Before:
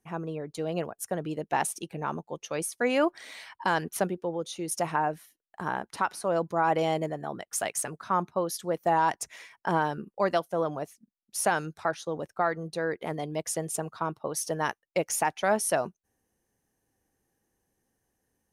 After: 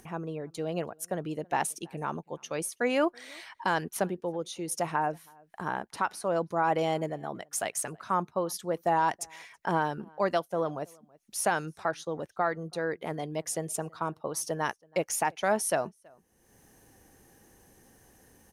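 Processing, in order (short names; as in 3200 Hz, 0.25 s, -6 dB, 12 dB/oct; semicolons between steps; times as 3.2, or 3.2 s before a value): outdoor echo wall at 56 m, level -28 dB; upward compressor, threshold -40 dBFS; gain -1.5 dB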